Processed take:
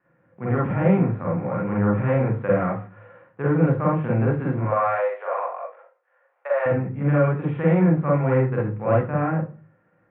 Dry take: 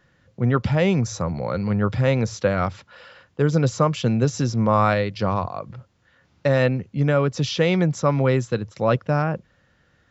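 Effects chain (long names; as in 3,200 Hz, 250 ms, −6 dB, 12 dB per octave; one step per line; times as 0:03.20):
spectral envelope flattened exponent 0.6
0:04.59–0:06.66: Butterworth high-pass 480 Hz 48 dB per octave
noise gate with hold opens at −56 dBFS
Gaussian smoothing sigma 5.6 samples
convolution reverb RT60 0.40 s, pre-delay 41 ms, DRR −3.5 dB
level −2.5 dB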